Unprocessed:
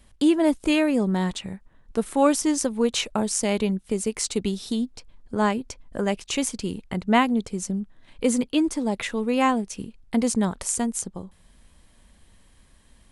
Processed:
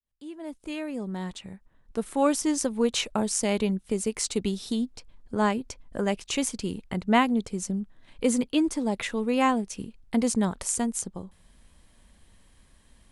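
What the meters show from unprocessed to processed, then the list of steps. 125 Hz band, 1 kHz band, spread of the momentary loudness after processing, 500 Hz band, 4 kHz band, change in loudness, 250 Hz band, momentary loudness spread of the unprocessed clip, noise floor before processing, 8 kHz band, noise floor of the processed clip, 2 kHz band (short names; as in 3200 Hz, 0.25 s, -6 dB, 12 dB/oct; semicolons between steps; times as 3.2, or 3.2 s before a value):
-3.5 dB, -2.5 dB, 14 LU, -3.5 dB, -3.0 dB, -3.0 dB, -3.5 dB, 12 LU, -57 dBFS, -2.0 dB, -60 dBFS, -3.0 dB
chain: opening faded in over 2.80 s; gain -2 dB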